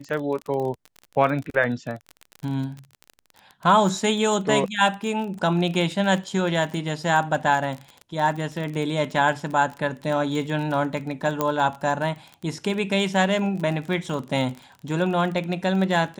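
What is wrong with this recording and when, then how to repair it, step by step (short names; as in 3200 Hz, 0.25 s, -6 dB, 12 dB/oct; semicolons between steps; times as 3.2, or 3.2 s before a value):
crackle 29/s -29 dBFS
11.41 pop -9 dBFS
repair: de-click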